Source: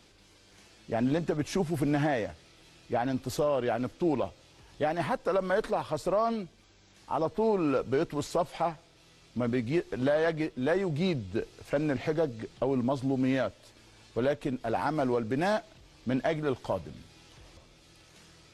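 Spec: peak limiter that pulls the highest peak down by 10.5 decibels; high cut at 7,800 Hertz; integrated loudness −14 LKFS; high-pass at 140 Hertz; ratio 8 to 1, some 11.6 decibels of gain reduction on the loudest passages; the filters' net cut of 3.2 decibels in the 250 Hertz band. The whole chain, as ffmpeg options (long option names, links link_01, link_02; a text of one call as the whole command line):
ffmpeg -i in.wav -af "highpass=140,lowpass=7800,equalizer=frequency=250:width_type=o:gain=-3.5,acompressor=threshold=-36dB:ratio=8,volume=29.5dB,alimiter=limit=-3dB:level=0:latency=1" out.wav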